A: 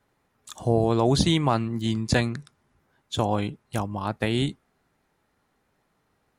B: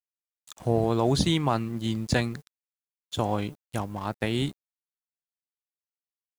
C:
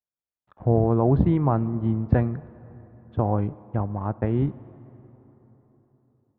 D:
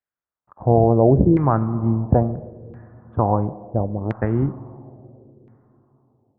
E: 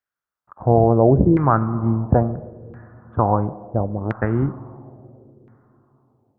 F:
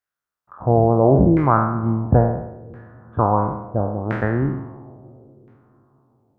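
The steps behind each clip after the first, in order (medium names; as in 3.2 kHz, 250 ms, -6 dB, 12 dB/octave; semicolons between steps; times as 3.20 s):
in parallel at -8 dB: word length cut 8-bit, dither triangular; on the sum: crossover distortion -41.5 dBFS; trim -5 dB
Bessel low-pass 1 kHz, order 4; peaking EQ 82 Hz +6 dB 1.5 oct; plate-style reverb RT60 4 s, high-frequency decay 0.55×, DRR 18 dB; trim +3 dB
wow and flutter 28 cents; spring tank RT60 1.8 s, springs 44 ms, chirp 35 ms, DRR 17.5 dB; LFO low-pass saw down 0.73 Hz 420–1900 Hz; trim +2.5 dB
peaking EQ 1.4 kHz +8 dB 0.76 oct
spectral sustain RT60 0.81 s; trim -1.5 dB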